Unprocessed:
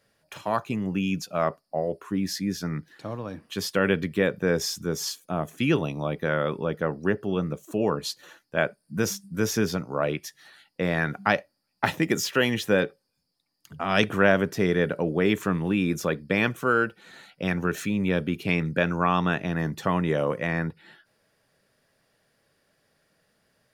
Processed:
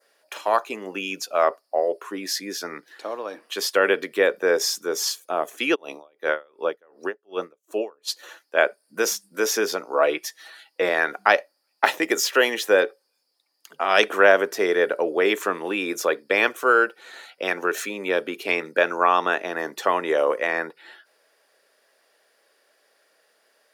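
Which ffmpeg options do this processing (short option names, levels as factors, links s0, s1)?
-filter_complex "[0:a]asplit=3[s0][s1][s2];[s0]afade=t=out:st=5.74:d=0.02[s3];[s1]aeval=exprs='val(0)*pow(10,-36*(0.5-0.5*cos(2*PI*2.7*n/s))/20)':c=same,afade=t=in:st=5.74:d=0.02,afade=t=out:st=8.07:d=0.02[s4];[s2]afade=t=in:st=8.07:d=0.02[s5];[s3][s4][s5]amix=inputs=3:normalize=0,asettb=1/sr,asplit=3[s6][s7][s8];[s6]atrim=end=9.924[s9];[s7]atrim=start=9.92:end=10.89,asetpts=PTS-STARTPTS,afade=t=in:d=0.004:c=qsin,afade=t=out:st=0.966:d=0.004:c=qsin,aecho=1:1:6.2:0.58,atrim=end_sample=42777[s10];[s8]atrim=start=10.886[s11];[s9][s10]acrossfade=d=0.004:c1=hsin:c2=qsin[s12];[s12][s11]acrossfade=d=0.004:c1=qsin:c2=hsin,highpass=f=380:w=0.5412,highpass=f=380:w=1.3066,adynamicequalizer=threshold=0.00708:dfrequency=2900:dqfactor=1.5:tfrequency=2900:tqfactor=1.5:attack=5:release=100:ratio=0.375:range=2:mode=cutabove:tftype=bell,volume=2"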